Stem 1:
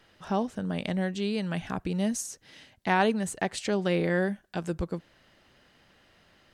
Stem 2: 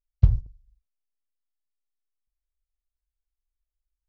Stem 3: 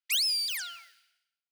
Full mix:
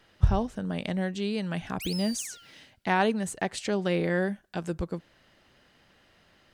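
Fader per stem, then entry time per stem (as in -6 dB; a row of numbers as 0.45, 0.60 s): -0.5, -4.5, -11.0 dB; 0.00, 0.00, 1.70 s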